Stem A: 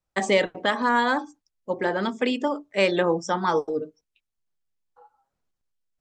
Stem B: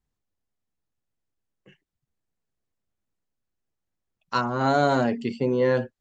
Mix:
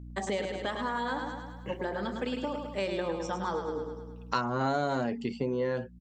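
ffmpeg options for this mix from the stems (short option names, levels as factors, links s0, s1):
-filter_complex "[0:a]equalizer=f=2100:t=o:w=0.62:g=-4.5,aeval=exprs='val(0)+0.0178*(sin(2*PI*60*n/s)+sin(2*PI*2*60*n/s)/2+sin(2*PI*3*60*n/s)/3+sin(2*PI*4*60*n/s)/4+sin(2*PI*5*60*n/s)/5)':c=same,volume=0.422,asplit=2[s0][s1];[s1]volume=0.473[s2];[1:a]dynaudnorm=f=220:g=13:m=6.68,volume=0.794,asplit=2[s3][s4];[s4]apad=whole_len=264685[s5];[s0][s5]sidechaincompress=threshold=0.0708:ratio=8:attack=16:release=1290[s6];[s2]aecho=0:1:105|210|315|420|525|630|735|840:1|0.56|0.314|0.176|0.0983|0.0551|0.0308|0.0173[s7];[s6][s3][s7]amix=inputs=3:normalize=0,acompressor=threshold=0.0355:ratio=3"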